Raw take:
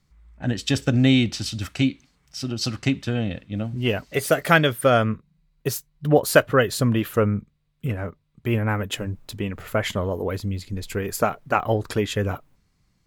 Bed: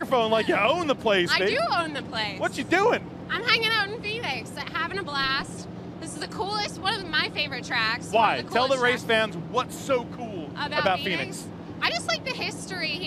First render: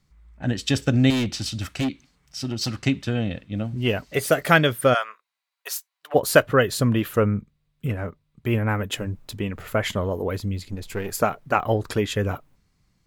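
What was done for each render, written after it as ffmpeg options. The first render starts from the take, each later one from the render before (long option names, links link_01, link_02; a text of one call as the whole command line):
ffmpeg -i in.wav -filter_complex "[0:a]asettb=1/sr,asplit=3[link_01][link_02][link_03];[link_01]atrim=end=1.104[link_04];[link_02]atrim=start=1.1:end=2.75,asetpts=PTS-STARTPTS,afade=type=in:duration=0.004:curve=qsin,afade=type=out:start_time=1.646:duration=0.004:curve=qsin,volume=20.5dB,asoftclip=hard,volume=-20.5dB[link_05];[link_03]atrim=start=2.746[link_06];[link_04][link_05]acrossfade=duration=0.004:curve1=hsin:curve2=qsin[link_07];[link_07][link_06]acrossfade=duration=0.004:curve1=qsin:curve2=hsin,asplit=3[link_08][link_09][link_10];[link_08]afade=type=out:start_time=4.93:duration=0.02[link_11];[link_09]highpass=frequency=760:width=0.5412,highpass=frequency=760:width=1.3066,afade=type=in:start_time=4.93:duration=0.02,afade=type=out:start_time=6.14:duration=0.02[link_12];[link_10]afade=type=in:start_time=6.14:duration=0.02[link_13];[link_11][link_12][link_13]amix=inputs=3:normalize=0,asettb=1/sr,asplit=3[link_14][link_15][link_16];[link_14]atrim=end=10.704[link_17];[link_15]atrim=start=10.7:end=11.11,asetpts=PTS-STARTPTS,afade=type=in:duration=0.004:curve=qsin,afade=type=out:start_time=0.406:duration=0.004:curve=qsin,aeval=exprs='if(lt(val(0),0),0.447*val(0),val(0))':channel_layout=same[link_18];[link_16]atrim=start=11.106[link_19];[link_17][link_18]acrossfade=duration=0.004:curve1=hsin:curve2=qsin[link_20];[link_20][link_19]acrossfade=duration=0.004:curve1=qsin:curve2=hsin" out.wav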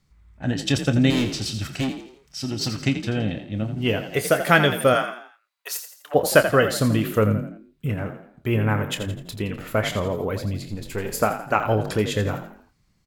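ffmpeg -i in.wav -filter_complex "[0:a]asplit=2[link_01][link_02];[link_02]adelay=28,volume=-11.5dB[link_03];[link_01][link_03]amix=inputs=2:normalize=0,asplit=2[link_04][link_05];[link_05]asplit=4[link_06][link_07][link_08][link_09];[link_06]adelay=84,afreqshift=38,volume=-10dB[link_10];[link_07]adelay=168,afreqshift=76,volume=-17.5dB[link_11];[link_08]adelay=252,afreqshift=114,volume=-25.1dB[link_12];[link_09]adelay=336,afreqshift=152,volume=-32.6dB[link_13];[link_10][link_11][link_12][link_13]amix=inputs=4:normalize=0[link_14];[link_04][link_14]amix=inputs=2:normalize=0" out.wav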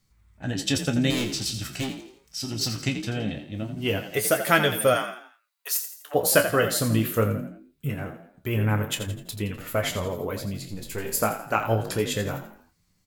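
ffmpeg -i in.wav -af "flanger=delay=9:depth=9.1:regen=44:speed=0.22:shape=sinusoidal,crystalizer=i=1.5:c=0" out.wav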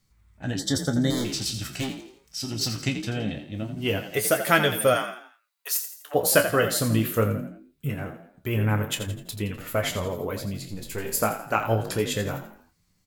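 ffmpeg -i in.wav -filter_complex "[0:a]asettb=1/sr,asplit=3[link_01][link_02][link_03];[link_01]atrim=end=0.594[link_04];[link_02]atrim=start=0.59:end=1.25,asetpts=PTS-STARTPTS,afade=type=in:duration=0.004:curve=qsin,afade=type=out:start_time=0.656:duration=0.004:curve=qsin,asuperstop=centerf=2600:order=4:qfactor=1.6[link_05];[link_03]atrim=start=1.246[link_06];[link_04][link_05]acrossfade=duration=0.004:curve1=hsin:curve2=qsin[link_07];[link_07][link_06]acrossfade=duration=0.004:curve1=qsin:curve2=hsin" out.wav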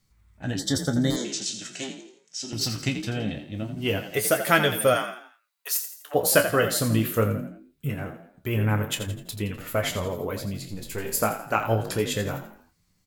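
ffmpeg -i in.wav -filter_complex "[0:a]asettb=1/sr,asplit=3[link_01][link_02][link_03];[link_01]atrim=end=1.164[link_04];[link_02]atrim=start=1.16:end=2.53,asetpts=PTS-STARTPTS,afade=type=in:duration=0.004:curve=qsin,afade=type=out:start_time=1.366:duration=0.004:curve=qsin,highpass=frequency=200:width=0.5412,highpass=frequency=200:width=1.3066,equalizer=frequency=270:width_type=q:width=4:gain=-6,equalizer=frequency=820:width_type=q:width=4:gain=-6,equalizer=frequency=1200:width_type=q:width=4:gain=-9,equalizer=frequency=2400:width_type=q:width=4:gain=-3,equalizer=frequency=4700:width_type=q:width=4:gain=-5,equalizer=frequency=6800:width_type=q:width=4:gain=7,lowpass=frequency=8000:width=0.5412,lowpass=frequency=8000:width=1.3066[link_05];[link_03]atrim=start=2.526[link_06];[link_04][link_05]acrossfade=duration=0.004:curve1=hsin:curve2=qsin[link_07];[link_07][link_06]acrossfade=duration=0.004:curve1=qsin:curve2=hsin" out.wav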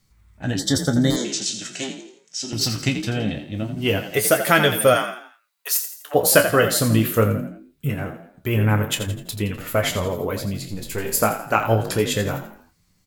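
ffmpeg -i in.wav -af "volume=5dB,alimiter=limit=-1dB:level=0:latency=1" out.wav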